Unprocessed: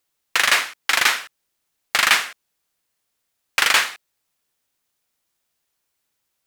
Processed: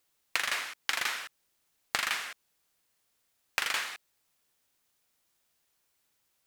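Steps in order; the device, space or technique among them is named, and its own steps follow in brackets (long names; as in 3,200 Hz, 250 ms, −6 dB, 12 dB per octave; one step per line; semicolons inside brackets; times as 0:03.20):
serial compression, leveller first (downward compressor 1.5 to 1, threshold −22 dBFS, peak gain reduction 4.5 dB; downward compressor 10 to 1, threshold −27 dBFS, peak gain reduction 13 dB)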